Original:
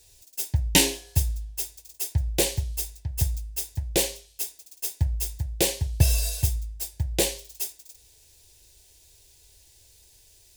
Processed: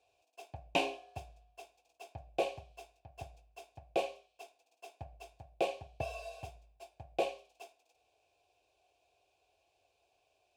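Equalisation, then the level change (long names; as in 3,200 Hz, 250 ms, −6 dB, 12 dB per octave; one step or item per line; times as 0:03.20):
formant filter a
high-shelf EQ 2,600 Hz −9.5 dB
+7.5 dB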